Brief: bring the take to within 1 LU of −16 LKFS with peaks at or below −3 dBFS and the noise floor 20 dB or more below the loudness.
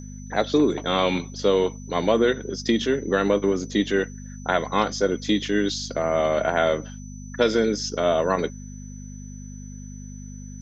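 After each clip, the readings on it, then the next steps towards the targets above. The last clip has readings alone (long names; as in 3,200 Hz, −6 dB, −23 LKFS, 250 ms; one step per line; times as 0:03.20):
mains hum 50 Hz; hum harmonics up to 250 Hz; level of the hum −36 dBFS; interfering tone 6,000 Hz; level of the tone −47 dBFS; integrated loudness −23.5 LKFS; sample peak −6.5 dBFS; target loudness −16.0 LKFS
→ hum removal 50 Hz, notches 5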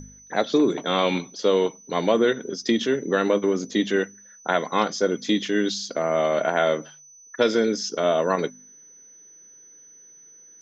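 mains hum none found; interfering tone 6,000 Hz; level of the tone −47 dBFS
→ notch filter 6,000 Hz, Q 30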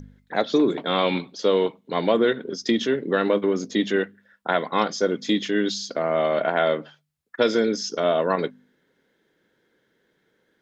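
interfering tone none found; integrated loudness −23.5 LKFS; sample peak −6.5 dBFS; target loudness −16.0 LKFS
→ level +7.5 dB
brickwall limiter −3 dBFS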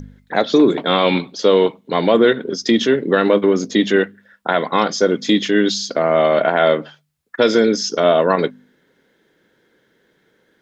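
integrated loudness −16.5 LKFS; sample peak −3.0 dBFS; background noise floor −62 dBFS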